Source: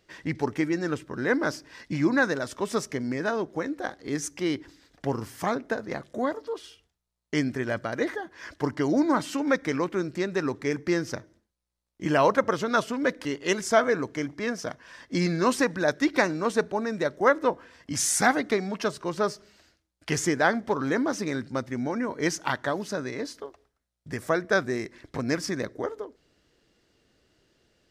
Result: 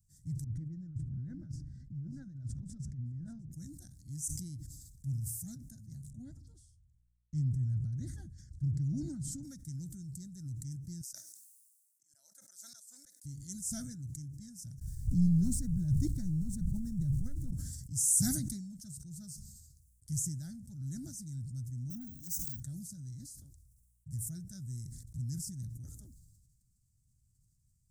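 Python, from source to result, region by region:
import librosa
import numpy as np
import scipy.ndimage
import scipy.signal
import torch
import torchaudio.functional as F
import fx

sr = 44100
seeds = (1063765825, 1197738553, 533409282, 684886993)

y = fx.chain(x, sr, fx.lowpass(hz=1600.0, slope=12),
    fx.over_compress(threshold_db=-34.0, ratio=-1.0),
    fx.echo_single(ms=595, db=-19.5), at=(0.44, 3.52))
y = fx.chain(y, sr, fx.lowpass(hz=8500.0, slope=12),
    fx.bass_treble(bass_db=6, treble_db=-10), at=(6.1, 9.43))
y = fx.chain(y, sr, fx.highpass(hz=600.0, slope=24),
    fx.notch(hz=3100.0, q=15.0),
    fx.auto_swell(attack_ms=253.0), at=(11.01, 13.24))
y = fx.chain(y, sr, fx.zero_step(step_db=-33.5),
    fx.riaa(side='playback'), at=(14.81, 17.51))
y = fx.chain(y, sr, fx.comb(ms=3.9, depth=0.73),
    fx.resample_bad(factor=2, down='none', up='hold'),
    fx.transformer_sat(knee_hz=2200.0), at=(21.9, 22.6))
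y = scipy.signal.sosfilt(scipy.signal.ellip(3, 1.0, 50, [130.0, 8000.0], 'bandstop', fs=sr, output='sos'), y)
y = fx.peak_eq(y, sr, hz=1400.0, db=7.0, octaves=0.56)
y = fx.sustainer(y, sr, db_per_s=36.0)
y = y * librosa.db_to_amplitude(1.0)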